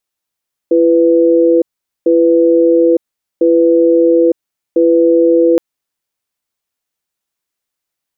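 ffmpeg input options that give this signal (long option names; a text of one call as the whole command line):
ffmpeg -f lavfi -i "aevalsrc='0.355*(sin(2*PI*337*t)+sin(2*PI*497*t))*clip(min(mod(t,1.35),0.91-mod(t,1.35))/0.005,0,1)':duration=4.87:sample_rate=44100" out.wav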